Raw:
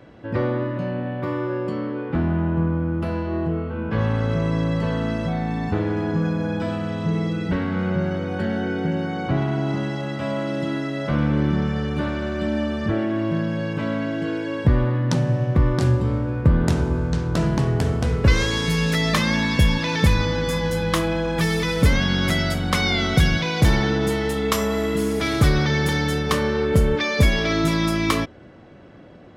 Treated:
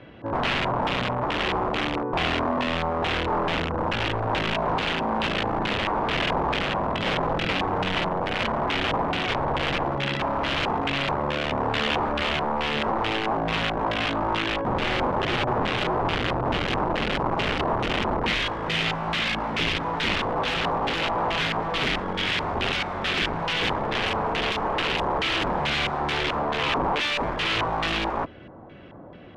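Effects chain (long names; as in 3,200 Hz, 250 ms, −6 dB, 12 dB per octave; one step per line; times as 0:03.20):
0:04.53–0:06.29: EQ curve with evenly spaced ripples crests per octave 1.4, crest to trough 11 dB
brickwall limiter −17.5 dBFS, peak gain reduction 11.5 dB
wrap-around overflow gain 21.5 dB
auto-filter low-pass square 2.3 Hz 970–3,000 Hz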